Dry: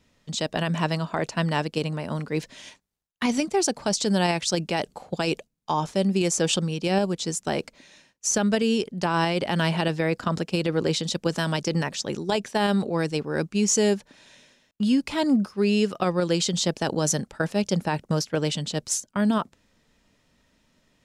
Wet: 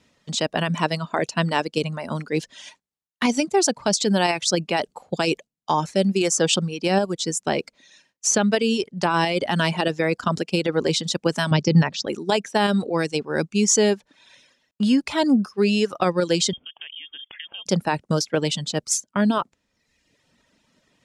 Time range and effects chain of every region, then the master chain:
0:11.51–0:12.07: low-pass filter 5,700 Hz 24 dB per octave + parametric band 130 Hz +11 dB 1.5 octaves
0:16.53–0:17.66: high-pass filter 40 Hz + downward compressor 10 to 1, threshold −37 dBFS + voice inversion scrambler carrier 3,400 Hz
whole clip: low-pass filter 11,000 Hz 12 dB per octave; reverb reduction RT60 0.93 s; high-pass filter 130 Hz 6 dB per octave; level +4.5 dB

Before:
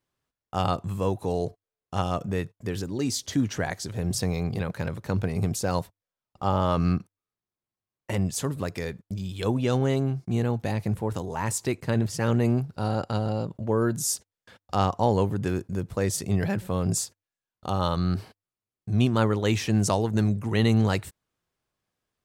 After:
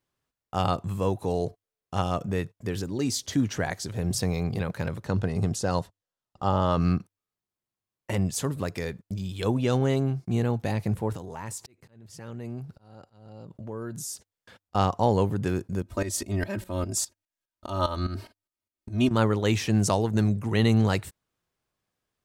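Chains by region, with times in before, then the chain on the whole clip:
0:05.05–0:06.81: low-pass filter 8,800 Hz + notch filter 2,300 Hz, Q 6.7
0:11.16–0:14.75: downward compressor 3 to 1, threshold −35 dBFS + volume swells 678 ms
0:15.82–0:19.11: shaped tremolo saw up 4.9 Hz, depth 80% + comb filter 3.2 ms, depth 93%
whole clip: no processing

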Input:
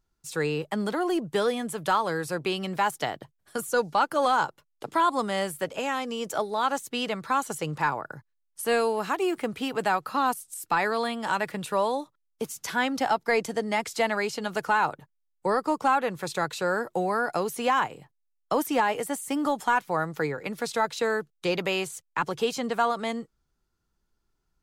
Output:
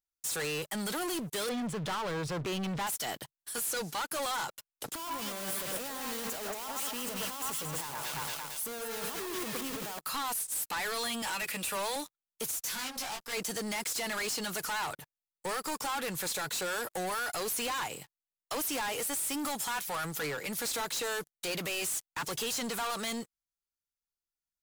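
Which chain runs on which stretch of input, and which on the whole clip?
0:01.49–0:02.87: low-pass filter 4,400 Hz + spectral tilt −3.5 dB per octave
0:04.95–0:09.99: each half-wave held at its own peak + delay that swaps between a low-pass and a high-pass 114 ms, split 1,700 Hz, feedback 62%, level −7.5 dB
0:11.22–0:11.96: high-pass filter 240 Hz + parametric band 2,500 Hz +9.5 dB 0.34 octaves + notch filter 390 Hz, Q 7
0:12.51–0:13.33: tube saturation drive 34 dB, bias 0.65 + micro pitch shift up and down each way 17 cents
whole clip: first-order pre-emphasis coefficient 0.9; brickwall limiter −31 dBFS; leveller curve on the samples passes 5

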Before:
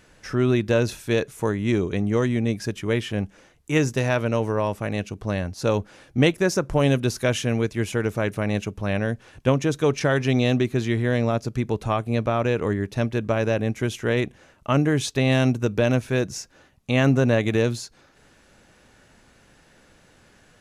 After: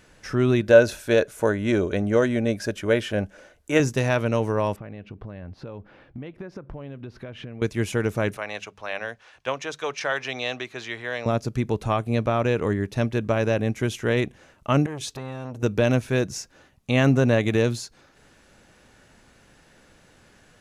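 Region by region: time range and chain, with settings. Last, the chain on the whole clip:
0:00.61–0:03.80: parametric band 140 Hz −9.5 dB 0.46 octaves + hollow resonant body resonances 590/1,500 Hz, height 11 dB, ringing for 25 ms
0:04.76–0:07.62: high-frequency loss of the air 380 metres + downward compressor 8 to 1, threshold −33 dBFS
0:08.37–0:11.26: three-way crossover with the lows and the highs turned down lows −21 dB, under 570 Hz, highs −14 dB, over 6,700 Hz + mains-hum notches 50/100/150/200 Hz
0:14.86–0:15.63: downward compressor 4 to 1, threshold −28 dBFS + saturating transformer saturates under 650 Hz
whole clip: no processing

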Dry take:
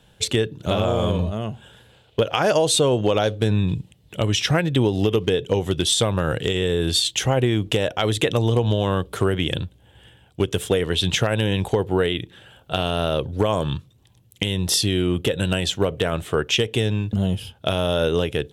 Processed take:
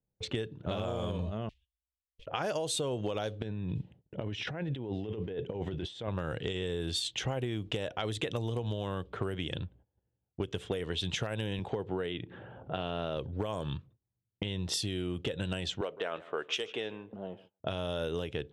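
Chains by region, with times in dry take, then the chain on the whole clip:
0:01.49–0:02.27: one scale factor per block 3 bits + inverse Chebyshev band-stop filter 110–1,500 Hz
0:03.42–0:06.08: high-pass filter 88 Hz 6 dB per octave + parametric band 1,200 Hz −7 dB 0.31 octaves + compressor whose output falls as the input rises −27 dBFS
0:11.59–0:13.17: high-shelf EQ 5,500 Hz −10.5 dB + upward compression, threshold −22 dBFS + high-pass filter 100 Hz
0:15.81–0:17.60: high-pass filter 430 Hz + repeating echo 156 ms, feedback 33%, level −19.5 dB
whole clip: low-pass that shuts in the quiet parts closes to 560 Hz, open at −15.5 dBFS; noise gate −46 dBFS, range −22 dB; downward compressor, threshold −22 dBFS; level −8 dB

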